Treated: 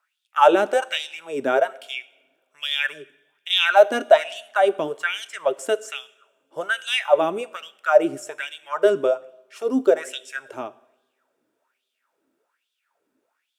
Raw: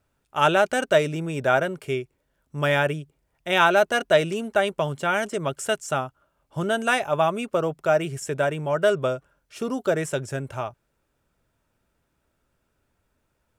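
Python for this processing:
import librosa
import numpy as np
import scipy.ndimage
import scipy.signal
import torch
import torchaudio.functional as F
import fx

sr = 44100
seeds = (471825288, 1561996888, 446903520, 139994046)

y = fx.filter_lfo_highpass(x, sr, shape='sine', hz=1.2, low_hz=270.0, high_hz=3500.0, q=5.7)
y = fx.rev_double_slope(y, sr, seeds[0], early_s=0.75, late_s=3.0, knee_db=-27, drr_db=16.0)
y = y * librosa.db_to_amplitude(-3.5)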